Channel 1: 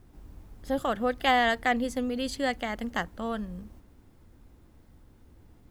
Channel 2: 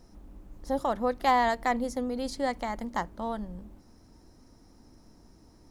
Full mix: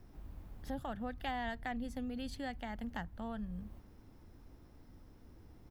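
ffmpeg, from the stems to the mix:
-filter_complex "[0:a]volume=0.75[s0];[1:a]adelay=1.4,volume=0.316[s1];[s0][s1]amix=inputs=2:normalize=0,equalizer=f=7500:t=o:w=1.2:g=-6,acrossover=split=170[s2][s3];[s3]acompressor=threshold=0.00355:ratio=2[s4];[s2][s4]amix=inputs=2:normalize=0"

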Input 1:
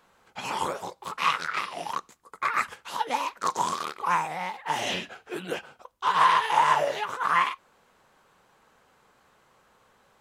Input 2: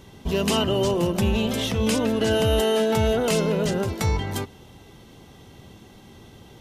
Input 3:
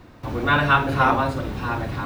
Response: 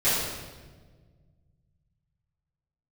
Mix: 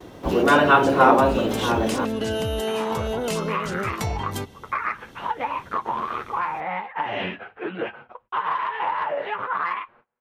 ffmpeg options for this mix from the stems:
-filter_complex "[0:a]lowpass=f=2500:w=0.5412,lowpass=f=2500:w=1.3066,acontrast=74,flanger=delay=8.3:depth=2:regen=-17:speed=0.51:shape=sinusoidal,adelay=2300,volume=1.26[s0];[1:a]volume=0.944[s1];[2:a]highpass=230,equalizer=f=440:t=o:w=2.3:g=12.5,volume=0.708,asplit=2[s2][s3];[s3]apad=whole_len=291145[s4];[s1][s4]sidechaincompress=threshold=0.1:ratio=8:attack=16:release=205[s5];[s0][s5]amix=inputs=2:normalize=0,acompressor=threshold=0.0794:ratio=10,volume=1[s6];[s2][s6]amix=inputs=2:normalize=0,agate=range=0.0447:threshold=0.00282:ratio=16:detection=peak"

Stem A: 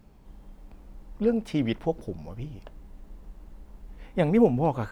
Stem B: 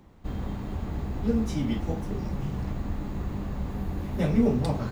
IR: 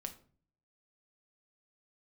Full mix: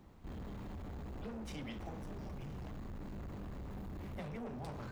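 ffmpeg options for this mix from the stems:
-filter_complex "[0:a]highpass=f=610:w=0.5412,highpass=f=610:w=1.3066,acompressor=threshold=0.0112:ratio=6,volume=0.355[s0];[1:a]acompressor=threshold=0.0447:ratio=6,asoftclip=type=tanh:threshold=0.0133,volume=0.562[s1];[s0][s1]amix=inputs=2:normalize=0"

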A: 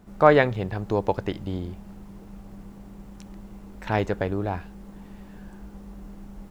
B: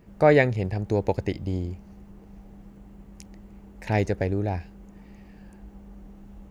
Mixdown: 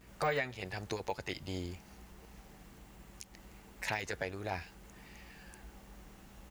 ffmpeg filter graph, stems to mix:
-filter_complex "[0:a]deesser=1,aeval=exprs='val(0)+0.01*(sin(2*PI*60*n/s)+sin(2*PI*2*60*n/s)/2+sin(2*PI*3*60*n/s)/3+sin(2*PI*4*60*n/s)/4+sin(2*PI*5*60*n/s)/5)':c=same,volume=0.251,asplit=2[s0][s1];[1:a]volume=-1,adelay=9.8,volume=0.891[s2];[s1]apad=whole_len=287485[s3];[s2][s3]sidechaincompress=threshold=0.0126:ratio=8:attack=34:release=656[s4];[s0][s4]amix=inputs=2:normalize=0,tiltshelf=f=930:g=-9,alimiter=limit=0.0794:level=0:latency=1:release=205"

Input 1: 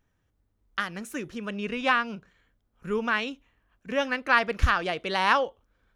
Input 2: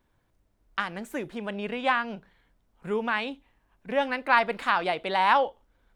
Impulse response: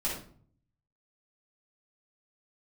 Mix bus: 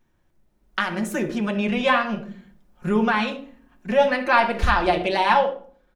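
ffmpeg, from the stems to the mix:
-filter_complex "[0:a]aecho=1:1:5.4:0.38,volume=1,asplit=2[s0][s1];[s1]volume=0.119[s2];[1:a]equalizer=f=350:w=3.9:g=5.5,adelay=5.5,volume=0.562,asplit=3[s3][s4][s5];[s4]volume=0.398[s6];[s5]apad=whole_len=262848[s7];[s0][s7]sidechaincompress=threshold=0.02:ratio=8:attack=5.1:release=343[s8];[2:a]atrim=start_sample=2205[s9];[s2][s6]amix=inputs=2:normalize=0[s10];[s10][s9]afir=irnorm=-1:irlink=0[s11];[s8][s3][s11]amix=inputs=3:normalize=0,dynaudnorm=f=100:g=13:m=2.11"

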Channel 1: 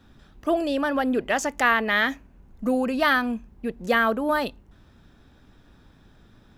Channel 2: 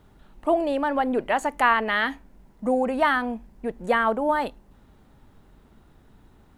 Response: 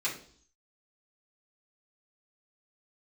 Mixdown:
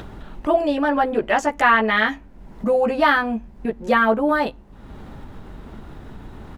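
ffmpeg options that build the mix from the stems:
-filter_complex "[0:a]volume=1.19[s0];[1:a]adelay=14,volume=1.26,asplit=2[s1][s2];[s2]apad=whole_len=290083[s3];[s0][s3]sidechaingate=range=0.0224:threshold=0.00891:ratio=16:detection=peak[s4];[s4][s1]amix=inputs=2:normalize=0,highshelf=f=6500:g=-12,acompressor=mode=upward:threshold=0.0708:ratio=2.5"

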